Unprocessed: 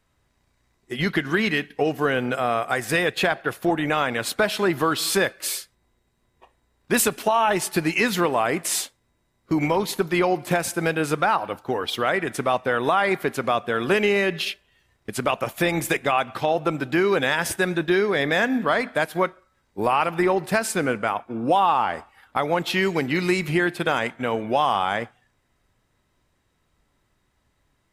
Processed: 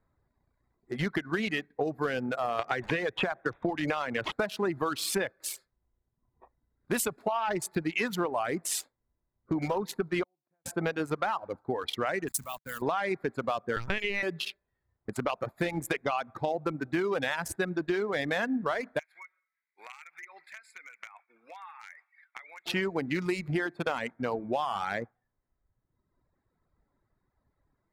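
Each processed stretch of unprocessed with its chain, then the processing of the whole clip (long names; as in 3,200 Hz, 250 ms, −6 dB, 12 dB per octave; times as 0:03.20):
0:02.59–0:04.32: bad sample-rate conversion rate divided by 6×, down none, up filtered + multiband upward and downward compressor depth 100%
0:10.23–0:10.66: low-pass filter 5,000 Hz 24 dB per octave + gate with flip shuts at −28 dBFS, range −42 dB
0:12.28–0:12.82: high-pass filter 180 Hz + bit-depth reduction 6 bits, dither none + drawn EQ curve 150 Hz 0 dB, 400 Hz −19 dB, 1,600 Hz −8 dB, 8,800 Hz +12 dB
0:13.76–0:14.23: tilt shelving filter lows −6.5 dB, about 870 Hz + linear-prediction vocoder at 8 kHz pitch kept
0:18.99–0:22.66: high-pass with resonance 2,200 Hz, resonance Q 6.5 + downward compressor, threshold −32 dBFS + double-tracking delay 17 ms −13.5 dB
whole clip: adaptive Wiener filter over 15 samples; reverb reduction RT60 1.2 s; downward compressor, threshold −22 dBFS; level −3.5 dB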